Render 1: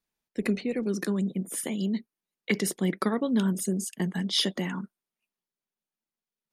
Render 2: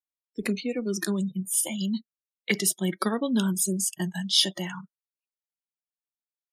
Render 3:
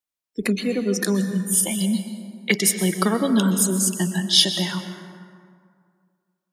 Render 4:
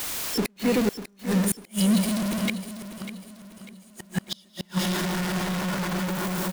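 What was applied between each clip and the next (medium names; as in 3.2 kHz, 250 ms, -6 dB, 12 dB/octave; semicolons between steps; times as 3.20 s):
treble shelf 2.6 kHz +8.5 dB; spectral noise reduction 22 dB; level rider gain up to 6 dB; trim -5 dB
plate-style reverb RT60 2.1 s, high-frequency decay 0.5×, pre-delay 110 ms, DRR 8 dB; trim +5.5 dB
jump at every zero crossing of -19 dBFS; inverted gate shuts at -11 dBFS, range -39 dB; feedback delay 596 ms, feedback 41%, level -12 dB; trim -3 dB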